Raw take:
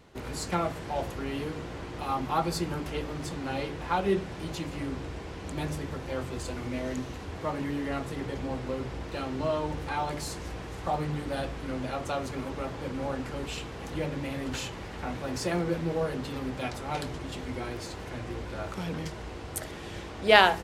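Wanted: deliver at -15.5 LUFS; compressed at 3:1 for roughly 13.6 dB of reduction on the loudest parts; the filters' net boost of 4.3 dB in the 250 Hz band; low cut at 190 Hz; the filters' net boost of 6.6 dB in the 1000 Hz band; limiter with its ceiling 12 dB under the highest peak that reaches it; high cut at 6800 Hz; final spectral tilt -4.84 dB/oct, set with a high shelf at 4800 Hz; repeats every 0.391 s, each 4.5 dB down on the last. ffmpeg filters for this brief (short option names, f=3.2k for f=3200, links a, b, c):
-af "highpass=190,lowpass=6.8k,equalizer=f=250:t=o:g=6.5,equalizer=f=1k:t=o:g=8.5,highshelf=f=4.8k:g=-8.5,acompressor=threshold=-28dB:ratio=3,alimiter=level_in=2.5dB:limit=-24dB:level=0:latency=1,volume=-2.5dB,aecho=1:1:391|782|1173|1564|1955|2346|2737|3128|3519:0.596|0.357|0.214|0.129|0.0772|0.0463|0.0278|0.0167|0.01,volume=18.5dB"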